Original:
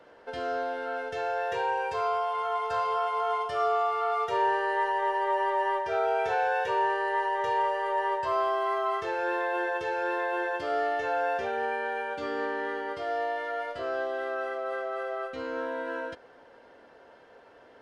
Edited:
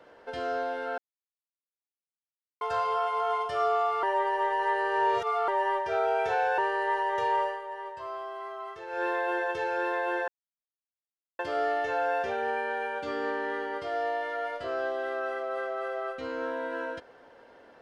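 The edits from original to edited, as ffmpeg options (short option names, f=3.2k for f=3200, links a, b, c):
-filter_complex "[0:a]asplit=9[a][b][c][d][e][f][g][h][i];[a]atrim=end=0.98,asetpts=PTS-STARTPTS,afade=t=out:st=0.976:d=0.004:c=hsin[j];[b]atrim=start=0.98:end=2.61,asetpts=PTS-STARTPTS,volume=0[k];[c]atrim=start=2.61:end=4.032,asetpts=PTS-STARTPTS,afade=t=in:d=0.004:c=hsin[l];[d]atrim=start=4.028:end=5.482,asetpts=PTS-STARTPTS,areverse[m];[e]atrim=start=5.478:end=6.582[n];[f]atrim=start=6.838:end=7.87,asetpts=PTS-STARTPTS,afade=t=out:st=0.862:d=0.17:silence=0.298538[o];[g]atrim=start=7.87:end=9.13,asetpts=PTS-STARTPTS,volume=-10.5dB[p];[h]atrim=start=9.13:end=10.54,asetpts=PTS-STARTPTS,afade=t=in:d=0.17:silence=0.298538,afade=t=out:st=1.406:d=0.004:c=hsin,apad=pad_dur=1.11[q];[i]atrim=start=10.54,asetpts=PTS-STARTPTS,afade=t=in:d=0.004:c=hsin[r];[j][k][l]concat=n=3:v=0:a=1[s];[s][m]acrossfade=d=0.004:c1=hsin:c2=hsin[t];[t][n]acrossfade=d=0.004:c1=hsin:c2=hsin[u];[o][p][q][r]concat=n=4:v=0:a=1[v];[u][v]acrossfade=d=0.004:c1=hsin:c2=hsin"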